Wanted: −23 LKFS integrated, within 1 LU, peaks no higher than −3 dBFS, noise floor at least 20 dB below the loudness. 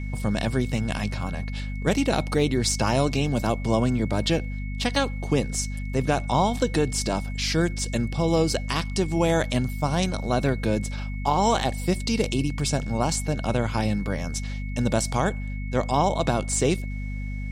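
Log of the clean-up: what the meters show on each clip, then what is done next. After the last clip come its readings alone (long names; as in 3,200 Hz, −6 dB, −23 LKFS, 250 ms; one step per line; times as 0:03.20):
mains hum 50 Hz; hum harmonics up to 250 Hz; level of the hum −28 dBFS; interfering tone 2,200 Hz; level of the tone −42 dBFS; integrated loudness −25.0 LKFS; sample peak −9.5 dBFS; target loudness −23.0 LKFS
→ mains-hum notches 50/100/150/200/250 Hz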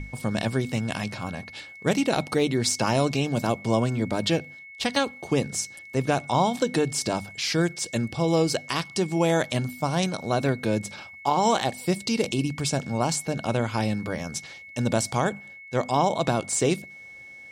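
mains hum none found; interfering tone 2,200 Hz; level of the tone −42 dBFS
→ notch filter 2,200 Hz, Q 30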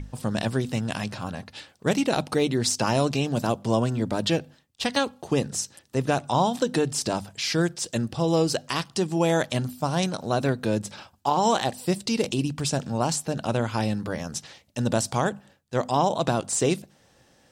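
interfering tone none found; integrated loudness −26.0 LKFS; sample peak −9.5 dBFS; target loudness −23.0 LKFS
→ level +3 dB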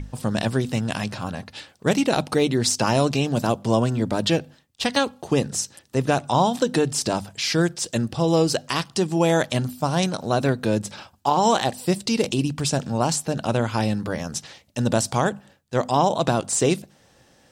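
integrated loudness −23.0 LKFS; sample peak −6.5 dBFS; background noise floor −57 dBFS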